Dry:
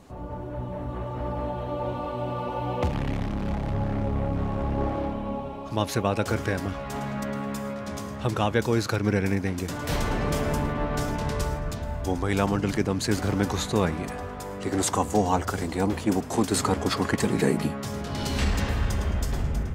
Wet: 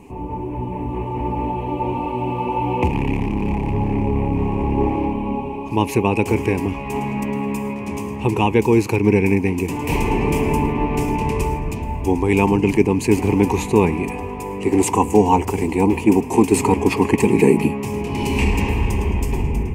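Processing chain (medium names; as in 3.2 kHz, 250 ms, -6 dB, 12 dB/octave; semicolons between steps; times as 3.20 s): FFT filter 150 Hz 0 dB, 420 Hz +7 dB, 600 Hz -11 dB, 940 Hz +8 dB, 1.4 kHz -20 dB, 2.5 kHz +10 dB, 3.6 kHz -13 dB, 8.8 kHz -1 dB; trim +6 dB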